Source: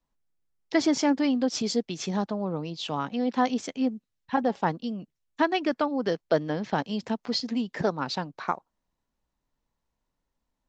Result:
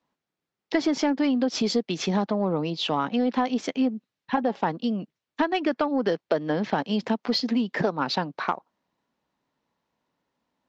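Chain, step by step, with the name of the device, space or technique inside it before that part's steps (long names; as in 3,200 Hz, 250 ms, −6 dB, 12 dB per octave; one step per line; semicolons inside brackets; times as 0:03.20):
AM radio (band-pass filter 170–4,400 Hz; downward compressor 6 to 1, threshold −27 dBFS, peak gain reduction 9.5 dB; soft clipping −18.5 dBFS, distortion −24 dB)
level +8 dB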